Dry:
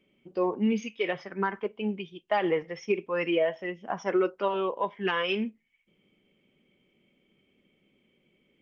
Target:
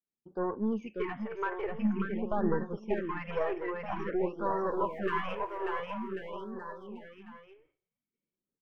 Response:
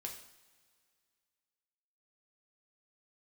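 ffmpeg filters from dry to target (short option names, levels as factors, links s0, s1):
-filter_complex "[0:a]asettb=1/sr,asplit=3[s0][s1][s2];[s0]atrim=end=4.454[s3];[s1]atrim=start=4.45:end=5.21,asetpts=PTS-STARTPTS,afade=t=in:d=0.004:c=qsin,afade=t=out:st=0.756:d=0.004:c=qsin,aeval=exprs='val(0)+0.5*0.00841*sgn(val(0))':c=same[s4];[s2]atrim=start=5.206[s5];[s3][s4]acrossfade=d=0.004:c1=hsin:c2=qsin[s6];[s6][s5]acrossfade=d=0.004:c1=qsin:c2=hsin,flanger=delay=0.7:depth=3.8:regen=69:speed=0.35:shape=sinusoidal,aeval=exprs='0.126*(cos(1*acos(clip(val(0)/0.126,-1,1)))-cos(1*PI/2))+0.0251*(cos(2*acos(clip(val(0)/0.126,-1,1)))-cos(2*PI/2))+0.0158*(cos(5*acos(clip(val(0)/0.126,-1,1)))-cos(5*PI/2))+0.00891*(cos(6*acos(clip(val(0)/0.126,-1,1)))-cos(6*PI/2))':c=same,firequalizer=gain_entry='entry(410,0);entry(690,-3);entry(1000,3);entry(3700,-16);entry(5300,-19)':delay=0.05:min_phase=1,aecho=1:1:590|1092|1518|1880|2188:0.631|0.398|0.251|0.158|0.1,agate=range=0.0224:threshold=0.00224:ratio=3:detection=peak,asettb=1/sr,asplit=3[s7][s8][s9];[s7]atrim=end=1.684[s10];[s8]atrim=start=1.68:end=2.78,asetpts=PTS-STARTPTS,afade=t=in:d=0.004:c=qsin,afade=t=out:st=1.096:d=0.004:c=qsin,bass=f=250:g=8,treble=f=4000:g=-5[s11];[s9]atrim=start=2.776[s12];[s10][s11]acrossfade=d=0.004:c1=hsin:c2=qsin[s13];[s13][s12]acrossfade=d=0.004:c1=qsin:c2=hsin,afftfilt=real='re*(1-between(b*sr/1024,200*pow(2800/200,0.5+0.5*sin(2*PI*0.49*pts/sr))/1.41,200*pow(2800/200,0.5+0.5*sin(2*PI*0.49*pts/sr))*1.41))':imag='im*(1-between(b*sr/1024,200*pow(2800/200,0.5+0.5*sin(2*PI*0.49*pts/sr))/1.41,200*pow(2800/200,0.5+0.5*sin(2*PI*0.49*pts/sr))*1.41))':win_size=1024:overlap=0.75,volume=0.708"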